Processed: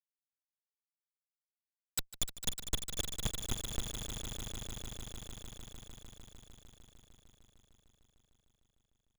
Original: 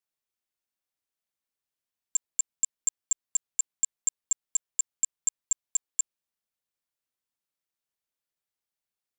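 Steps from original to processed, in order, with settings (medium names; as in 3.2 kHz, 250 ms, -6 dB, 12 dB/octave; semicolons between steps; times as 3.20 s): cycle switcher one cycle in 2, inverted; Doppler pass-by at 2.09 s, 29 m/s, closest 4.1 m; comb of notches 960 Hz; in parallel at +1 dB: compression 20:1, threshold -43 dBFS, peak gain reduction 19 dB; on the sum: Schmitt trigger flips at -30 dBFS; on a send: echo with a slow build-up 151 ms, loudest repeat 5, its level -9.5 dB; on the sum: trim +16.5 dB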